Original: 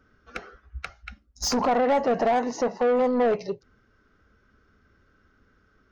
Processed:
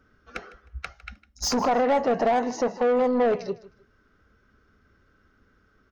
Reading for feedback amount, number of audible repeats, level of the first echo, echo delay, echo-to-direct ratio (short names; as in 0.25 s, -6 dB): 26%, 2, -19.0 dB, 0.155 s, -18.5 dB